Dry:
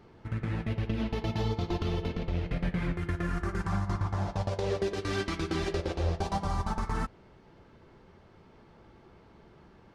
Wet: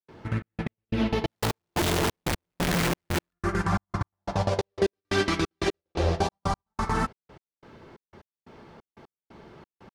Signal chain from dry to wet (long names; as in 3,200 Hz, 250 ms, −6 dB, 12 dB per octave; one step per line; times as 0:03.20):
0:01.28–0:03.33: sign of each sample alone
low-shelf EQ 82 Hz −11 dB
gate pattern ".xxxx..x.." 179 BPM −60 dB
level +8.5 dB